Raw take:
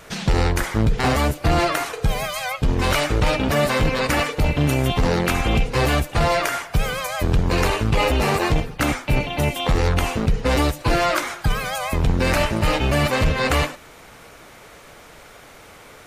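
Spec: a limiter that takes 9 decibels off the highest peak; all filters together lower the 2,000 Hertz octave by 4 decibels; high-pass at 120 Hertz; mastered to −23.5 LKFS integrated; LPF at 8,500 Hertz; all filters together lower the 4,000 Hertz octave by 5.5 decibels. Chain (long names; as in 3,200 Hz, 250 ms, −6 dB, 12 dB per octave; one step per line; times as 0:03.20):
high-pass filter 120 Hz
low-pass filter 8,500 Hz
parametric band 2,000 Hz −3.5 dB
parametric band 4,000 Hz −6 dB
level +4 dB
brickwall limiter −13.5 dBFS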